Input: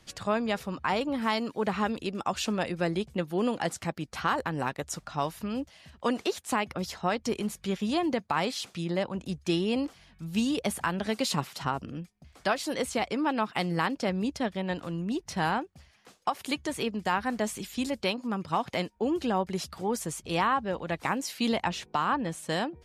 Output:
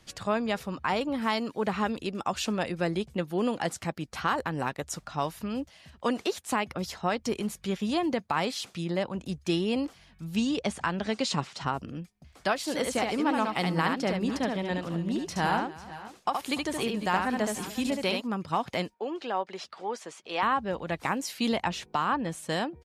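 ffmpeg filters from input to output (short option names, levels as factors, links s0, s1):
-filter_complex "[0:a]asettb=1/sr,asplit=3[s0][s1][s2];[s0]atrim=end=10.364[s3];[s1]atrim=start=10.36:end=11.67,asetpts=PTS-STARTPTS,afade=t=in:d=0.004:c=qsin,afade=t=out:st=1.306:d=0.004:c=qsin,lowpass=f=7900:w=0.5412,lowpass=f=7900:w=1.3066[s4];[s2]atrim=start=11.666[s5];[s3][s4]acrossfade=d=0.004:c1=hsin:c2=qsin[s6];[s6][s5]acrossfade=d=0.004:c1=qsin:c2=hsin,asplit=3[s7][s8][s9];[s7]afade=t=out:st=12.66:d=0.02[s10];[s8]aecho=1:1:72|292|495|509:0.631|0.112|0.112|0.133,afade=t=in:st=12.66:d=0.02,afade=t=out:st=18.2:d=0.02[s11];[s9]afade=t=in:st=18.2:d=0.02[s12];[s10][s11][s12]amix=inputs=3:normalize=0,asettb=1/sr,asplit=3[s13][s14][s15];[s13]atrim=end=18.944[s16];[s14]atrim=start=18.94:end=20.43,asetpts=PTS-STARTPTS,afade=t=in:d=0.004:c=qsin,afade=t=out:st=1.486:d=0.004:c=qsin,highpass=480,lowpass=4300[s17];[s15]atrim=start=20.426[s18];[s16][s17]acrossfade=d=0.004:c1=hsin:c2=qsin[s19];[s19][s18]acrossfade=d=0.004:c1=qsin:c2=hsin"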